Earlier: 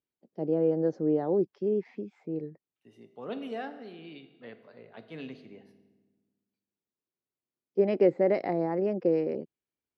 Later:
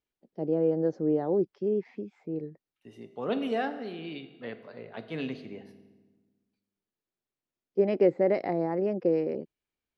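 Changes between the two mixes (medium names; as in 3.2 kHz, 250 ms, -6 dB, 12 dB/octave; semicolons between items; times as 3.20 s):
second voice +7.0 dB; master: remove high-pass 85 Hz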